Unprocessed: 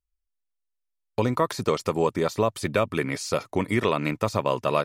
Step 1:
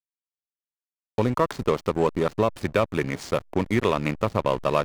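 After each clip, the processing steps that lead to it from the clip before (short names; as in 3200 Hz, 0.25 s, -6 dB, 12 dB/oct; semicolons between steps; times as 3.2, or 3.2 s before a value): backlash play -26 dBFS; gain +1.5 dB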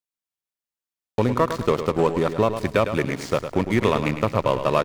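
feedback echo 0.106 s, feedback 41%, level -9.5 dB; gain +2 dB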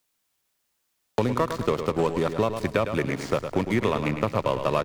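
three-band squash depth 70%; gain -4 dB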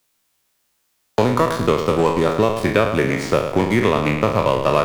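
spectral trails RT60 0.55 s; gain +5.5 dB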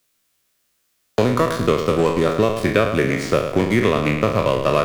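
bell 880 Hz -9 dB 0.3 oct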